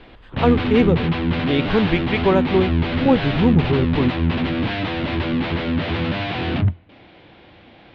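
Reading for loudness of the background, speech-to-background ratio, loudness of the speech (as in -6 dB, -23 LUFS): -22.0 LUFS, 1.5 dB, -20.5 LUFS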